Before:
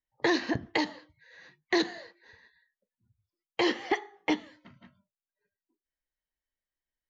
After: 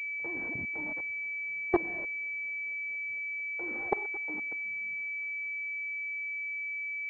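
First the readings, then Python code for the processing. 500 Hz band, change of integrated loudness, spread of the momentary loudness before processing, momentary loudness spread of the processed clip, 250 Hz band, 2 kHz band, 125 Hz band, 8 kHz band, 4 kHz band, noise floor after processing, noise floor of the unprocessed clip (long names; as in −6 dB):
−5.0 dB, −3.0 dB, 7 LU, 3 LU, −8.5 dB, +5.5 dB, −6.0 dB, can't be measured, below −30 dB, −36 dBFS, below −85 dBFS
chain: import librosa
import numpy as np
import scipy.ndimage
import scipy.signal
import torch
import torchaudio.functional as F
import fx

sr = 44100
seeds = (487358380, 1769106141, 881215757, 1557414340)

y = fx.echo_thinned(x, sr, ms=228, feedback_pct=70, hz=760.0, wet_db=-18)
y = fx.level_steps(y, sr, step_db=23)
y = fx.pwm(y, sr, carrier_hz=2300.0)
y = y * librosa.db_to_amplitude(4.0)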